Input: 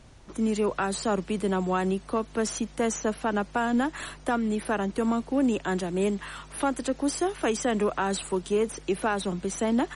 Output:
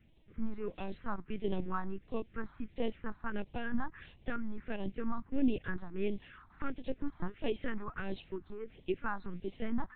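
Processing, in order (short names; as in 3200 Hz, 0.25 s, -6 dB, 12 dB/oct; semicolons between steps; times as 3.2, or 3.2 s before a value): LPC vocoder at 8 kHz pitch kept; phaser stages 4, 1.5 Hz, lowest notch 470–1400 Hz; upward expander 1.5:1, over -39 dBFS; gain -4 dB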